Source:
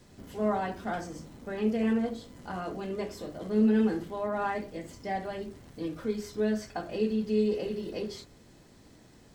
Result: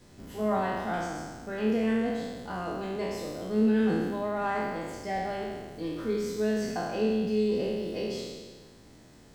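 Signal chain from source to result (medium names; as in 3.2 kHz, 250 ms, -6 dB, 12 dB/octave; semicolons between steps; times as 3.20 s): spectral sustain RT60 1.54 s; trim -1 dB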